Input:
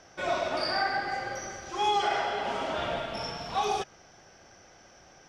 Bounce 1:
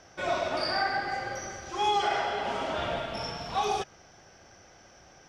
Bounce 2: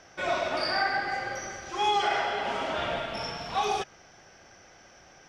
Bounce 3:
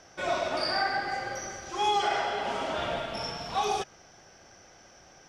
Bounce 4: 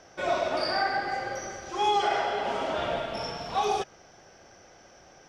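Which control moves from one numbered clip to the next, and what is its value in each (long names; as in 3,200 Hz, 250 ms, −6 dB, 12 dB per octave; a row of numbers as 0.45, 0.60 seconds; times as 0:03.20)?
parametric band, centre frequency: 79, 2,100, 9,700, 490 Hertz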